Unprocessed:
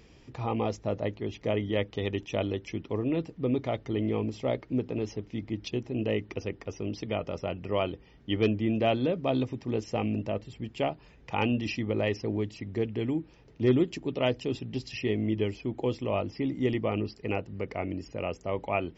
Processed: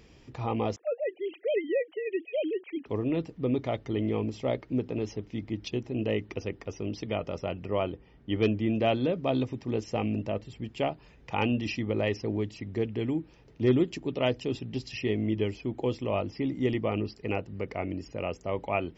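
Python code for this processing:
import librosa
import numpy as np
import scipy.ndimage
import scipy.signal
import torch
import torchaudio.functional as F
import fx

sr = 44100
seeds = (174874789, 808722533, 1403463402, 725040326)

y = fx.sine_speech(x, sr, at=(0.76, 2.86))
y = fx.lowpass(y, sr, hz=2100.0, slope=6, at=(7.66, 8.36))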